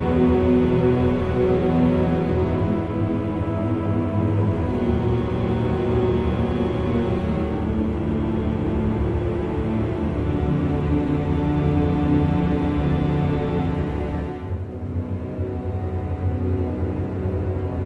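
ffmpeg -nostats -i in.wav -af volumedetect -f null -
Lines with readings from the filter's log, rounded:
mean_volume: -21.1 dB
max_volume: -6.9 dB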